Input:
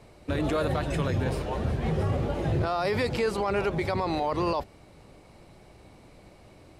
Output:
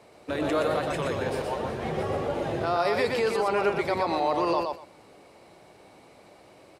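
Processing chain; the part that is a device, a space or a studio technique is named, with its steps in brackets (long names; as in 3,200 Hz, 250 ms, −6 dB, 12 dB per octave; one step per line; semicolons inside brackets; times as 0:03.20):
repeating echo 121 ms, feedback 17%, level −4 dB
filter by subtraction (in parallel: low-pass filter 560 Hz 12 dB per octave + polarity inversion)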